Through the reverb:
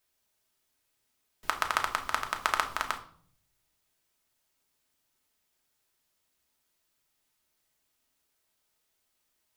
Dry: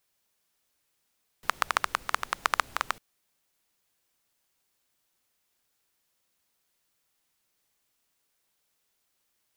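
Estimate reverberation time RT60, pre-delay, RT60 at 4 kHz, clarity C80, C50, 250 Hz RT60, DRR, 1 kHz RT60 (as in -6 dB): 0.55 s, 3 ms, 0.45 s, 16.5 dB, 12.0 dB, 0.90 s, 3.5 dB, 0.50 s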